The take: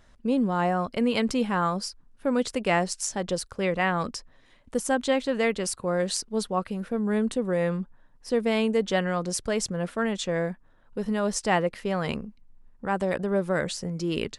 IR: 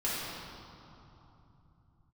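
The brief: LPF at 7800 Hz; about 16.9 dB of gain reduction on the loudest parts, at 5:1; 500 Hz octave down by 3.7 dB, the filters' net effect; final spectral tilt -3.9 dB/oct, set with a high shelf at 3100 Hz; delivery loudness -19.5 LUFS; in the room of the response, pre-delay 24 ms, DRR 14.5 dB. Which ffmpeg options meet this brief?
-filter_complex "[0:a]lowpass=7.8k,equalizer=f=500:t=o:g=-4.5,highshelf=f=3.1k:g=5.5,acompressor=threshold=-41dB:ratio=5,asplit=2[a][b];[1:a]atrim=start_sample=2205,adelay=24[c];[b][c]afir=irnorm=-1:irlink=0,volume=-22.5dB[d];[a][d]amix=inputs=2:normalize=0,volume=23.5dB"

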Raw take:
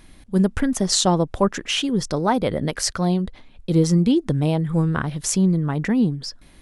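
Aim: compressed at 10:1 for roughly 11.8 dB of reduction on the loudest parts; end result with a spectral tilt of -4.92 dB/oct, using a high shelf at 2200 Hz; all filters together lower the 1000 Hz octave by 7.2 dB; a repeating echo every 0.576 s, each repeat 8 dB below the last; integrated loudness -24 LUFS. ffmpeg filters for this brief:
-af "equalizer=f=1k:t=o:g=-9,highshelf=f=2.2k:g=-4.5,acompressor=threshold=-26dB:ratio=10,aecho=1:1:576|1152|1728|2304|2880:0.398|0.159|0.0637|0.0255|0.0102,volume=6dB"

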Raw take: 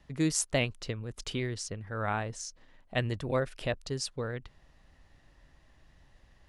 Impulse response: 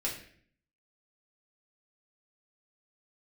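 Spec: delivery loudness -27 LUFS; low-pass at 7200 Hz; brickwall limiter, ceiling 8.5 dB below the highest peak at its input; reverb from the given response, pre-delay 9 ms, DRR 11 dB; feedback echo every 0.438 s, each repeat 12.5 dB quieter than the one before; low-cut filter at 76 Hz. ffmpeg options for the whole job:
-filter_complex "[0:a]highpass=76,lowpass=7.2k,alimiter=limit=-22.5dB:level=0:latency=1,aecho=1:1:438|876|1314:0.237|0.0569|0.0137,asplit=2[a][b];[1:a]atrim=start_sample=2205,adelay=9[c];[b][c]afir=irnorm=-1:irlink=0,volume=-15dB[d];[a][d]amix=inputs=2:normalize=0,volume=9dB"

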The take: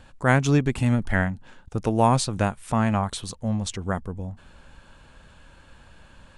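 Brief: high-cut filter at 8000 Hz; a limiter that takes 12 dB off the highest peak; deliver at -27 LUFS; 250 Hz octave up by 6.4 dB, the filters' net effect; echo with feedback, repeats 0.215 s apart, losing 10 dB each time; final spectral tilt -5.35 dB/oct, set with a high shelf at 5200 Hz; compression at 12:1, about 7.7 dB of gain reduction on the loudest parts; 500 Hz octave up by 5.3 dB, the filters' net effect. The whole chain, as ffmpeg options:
-af "lowpass=8k,equalizer=f=250:t=o:g=6.5,equalizer=f=500:t=o:g=5,highshelf=f=5.2k:g=8,acompressor=threshold=-17dB:ratio=12,alimiter=limit=-19.5dB:level=0:latency=1,aecho=1:1:215|430|645|860:0.316|0.101|0.0324|0.0104,volume=2.5dB"

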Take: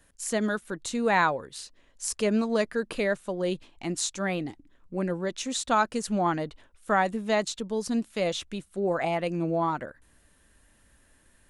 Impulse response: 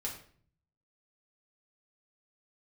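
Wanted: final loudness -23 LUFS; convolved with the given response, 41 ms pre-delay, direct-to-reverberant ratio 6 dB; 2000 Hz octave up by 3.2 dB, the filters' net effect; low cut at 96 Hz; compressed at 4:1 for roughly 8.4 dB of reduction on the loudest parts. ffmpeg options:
-filter_complex "[0:a]highpass=96,equalizer=f=2k:t=o:g=4,acompressor=threshold=-27dB:ratio=4,asplit=2[a][b];[1:a]atrim=start_sample=2205,adelay=41[c];[b][c]afir=irnorm=-1:irlink=0,volume=-6.5dB[d];[a][d]amix=inputs=2:normalize=0,volume=8dB"

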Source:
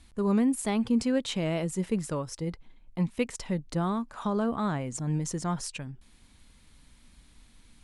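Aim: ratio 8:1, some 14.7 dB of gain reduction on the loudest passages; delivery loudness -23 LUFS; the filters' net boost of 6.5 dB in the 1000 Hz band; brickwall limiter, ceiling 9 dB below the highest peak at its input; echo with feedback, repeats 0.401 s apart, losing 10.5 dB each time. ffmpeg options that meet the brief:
-af "equalizer=f=1k:t=o:g=8,acompressor=threshold=-36dB:ratio=8,alimiter=level_in=9.5dB:limit=-24dB:level=0:latency=1,volume=-9.5dB,aecho=1:1:401|802|1203:0.299|0.0896|0.0269,volume=19.5dB"

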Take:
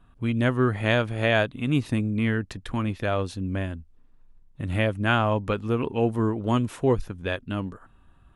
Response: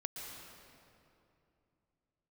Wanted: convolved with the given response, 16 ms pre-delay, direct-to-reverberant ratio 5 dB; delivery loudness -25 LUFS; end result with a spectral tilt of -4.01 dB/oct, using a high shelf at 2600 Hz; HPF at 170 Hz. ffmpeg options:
-filter_complex "[0:a]highpass=170,highshelf=f=2.6k:g=4.5,asplit=2[a][b];[1:a]atrim=start_sample=2205,adelay=16[c];[b][c]afir=irnorm=-1:irlink=0,volume=-4.5dB[d];[a][d]amix=inputs=2:normalize=0,volume=0.5dB"

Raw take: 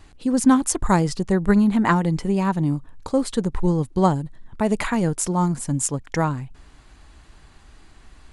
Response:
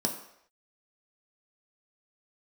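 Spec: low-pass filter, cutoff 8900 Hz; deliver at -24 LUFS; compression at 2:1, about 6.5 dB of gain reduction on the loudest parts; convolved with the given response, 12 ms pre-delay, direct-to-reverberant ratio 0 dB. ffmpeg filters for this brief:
-filter_complex "[0:a]lowpass=8.9k,acompressor=threshold=-22dB:ratio=2,asplit=2[a][b];[1:a]atrim=start_sample=2205,adelay=12[c];[b][c]afir=irnorm=-1:irlink=0,volume=-6dB[d];[a][d]amix=inputs=2:normalize=0,volume=-7.5dB"

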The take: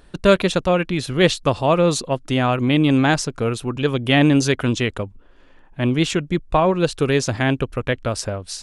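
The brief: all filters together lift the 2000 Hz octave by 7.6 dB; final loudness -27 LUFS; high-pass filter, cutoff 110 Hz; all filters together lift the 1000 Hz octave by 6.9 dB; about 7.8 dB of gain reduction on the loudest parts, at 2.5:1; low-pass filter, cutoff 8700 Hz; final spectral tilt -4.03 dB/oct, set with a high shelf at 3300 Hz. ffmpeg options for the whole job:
-af "highpass=110,lowpass=8.7k,equalizer=f=1k:t=o:g=7,equalizer=f=2k:t=o:g=5,highshelf=f=3.3k:g=7.5,acompressor=threshold=-18dB:ratio=2.5,volume=-5.5dB"

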